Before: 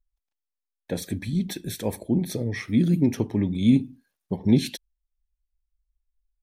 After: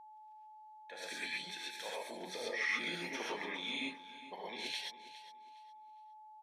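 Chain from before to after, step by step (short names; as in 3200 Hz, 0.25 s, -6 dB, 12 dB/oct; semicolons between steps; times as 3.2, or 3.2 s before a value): differentiator; reverse; compressor, threshold -46 dBFS, peak gain reduction 13.5 dB; reverse; transient shaper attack -4 dB, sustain +1 dB; BPF 620–2400 Hz; on a send: feedback echo 0.41 s, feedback 25%, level -15 dB; on the sum: non-linear reverb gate 0.15 s rising, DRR -4.5 dB; whine 860 Hz -69 dBFS; gain +16 dB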